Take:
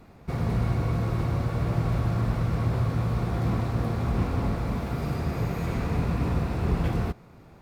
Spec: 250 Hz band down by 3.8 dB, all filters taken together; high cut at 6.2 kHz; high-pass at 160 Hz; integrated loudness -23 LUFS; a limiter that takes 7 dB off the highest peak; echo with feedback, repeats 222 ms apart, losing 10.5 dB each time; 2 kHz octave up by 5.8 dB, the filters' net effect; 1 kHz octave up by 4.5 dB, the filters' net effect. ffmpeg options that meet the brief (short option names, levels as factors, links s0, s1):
-af "highpass=160,lowpass=6200,equalizer=f=250:t=o:g=-3.5,equalizer=f=1000:t=o:g=4.5,equalizer=f=2000:t=o:g=6,alimiter=level_in=1.06:limit=0.0631:level=0:latency=1,volume=0.944,aecho=1:1:222|444|666:0.299|0.0896|0.0269,volume=3.35"